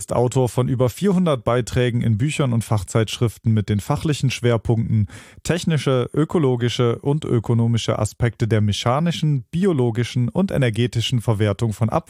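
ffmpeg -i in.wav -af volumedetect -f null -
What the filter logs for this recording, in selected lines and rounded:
mean_volume: -19.3 dB
max_volume: -3.9 dB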